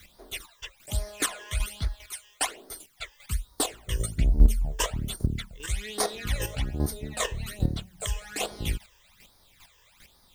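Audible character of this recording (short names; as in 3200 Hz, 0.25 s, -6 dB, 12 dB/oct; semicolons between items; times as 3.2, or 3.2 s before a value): a quantiser's noise floor 10-bit, dither triangular; phasing stages 12, 1.2 Hz, lowest notch 220–2700 Hz; chopped level 2.5 Hz, depth 60%, duty 15%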